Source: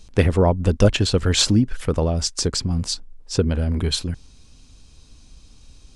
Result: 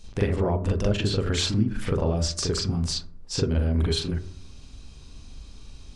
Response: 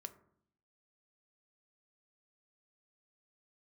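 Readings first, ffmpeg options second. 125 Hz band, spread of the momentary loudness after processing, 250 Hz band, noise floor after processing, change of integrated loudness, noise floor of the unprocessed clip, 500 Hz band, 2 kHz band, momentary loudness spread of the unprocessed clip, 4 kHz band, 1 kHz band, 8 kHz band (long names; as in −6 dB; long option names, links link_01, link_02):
−4.5 dB, 7 LU, −5.0 dB, −45 dBFS, −5.0 dB, −49 dBFS, −5.5 dB, −5.5 dB, 9 LU, −5.5 dB, −6.0 dB, −7.0 dB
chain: -filter_complex "[0:a]acompressor=threshold=-24dB:ratio=6,asplit=2[link_01][link_02];[1:a]atrim=start_sample=2205,lowpass=4400,adelay=41[link_03];[link_02][link_03]afir=irnorm=-1:irlink=0,volume=10.5dB[link_04];[link_01][link_04]amix=inputs=2:normalize=0,volume=-3dB"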